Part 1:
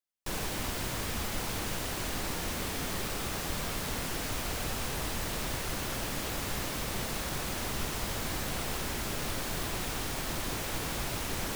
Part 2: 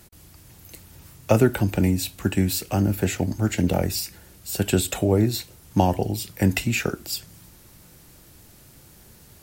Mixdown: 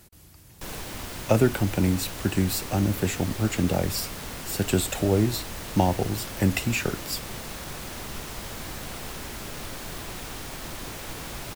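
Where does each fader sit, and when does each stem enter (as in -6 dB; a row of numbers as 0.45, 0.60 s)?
-2.0, -2.5 dB; 0.35, 0.00 s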